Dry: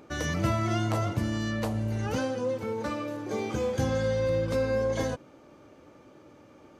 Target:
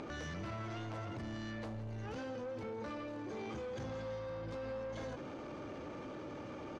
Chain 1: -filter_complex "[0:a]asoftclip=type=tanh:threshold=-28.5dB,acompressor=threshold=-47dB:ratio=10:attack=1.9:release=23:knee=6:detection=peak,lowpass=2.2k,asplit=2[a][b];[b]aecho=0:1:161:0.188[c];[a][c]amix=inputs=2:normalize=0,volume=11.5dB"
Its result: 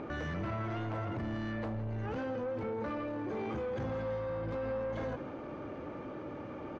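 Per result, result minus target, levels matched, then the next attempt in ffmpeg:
4000 Hz band -7.0 dB; compressor: peak gain reduction -6.5 dB
-filter_complex "[0:a]asoftclip=type=tanh:threshold=-28.5dB,acompressor=threshold=-47dB:ratio=10:attack=1.9:release=23:knee=6:detection=peak,lowpass=5.1k,asplit=2[a][b];[b]aecho=0:1:161:0.188[c];[a][c]amix=inputs=2:normalize=0,volume=11.5dB"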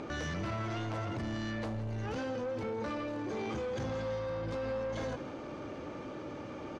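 compressor: peak gain reduction -6.5 dB
-filter_complex "[0:a]asoftclip=type=tanh:threshold=-28.5dB,acompressor=threshold=-54dB:ratio=10:attack=1.9:release=23:knee=6:detection=peak,lowpass=5.1k,asplit=2[a][b];[b]aecho=0:1:161:0.188[c];[a][c]amix=inputs=2:normalize=0,volume=11.5dB"

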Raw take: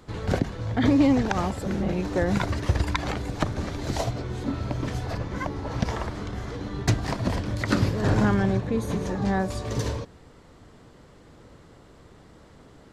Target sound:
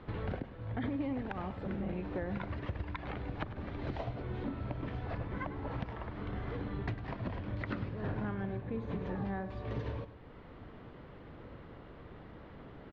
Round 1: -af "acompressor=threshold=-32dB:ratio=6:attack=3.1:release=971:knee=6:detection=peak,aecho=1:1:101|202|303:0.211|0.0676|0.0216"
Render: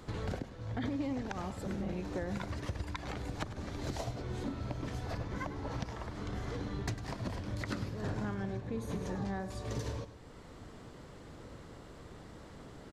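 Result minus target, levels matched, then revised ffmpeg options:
4000 Hz band +6.5 dB
-af "acompressor=threshold=-32dB:ratio=6:attack=3.1:release=971:knee=6:detection=peak,lowpass=f=3.1k:w=0.5412,lowpass=f=3.1k:w=1.3066,aecho=1:1:101|202|303:0.211|0.0676|0.0216"

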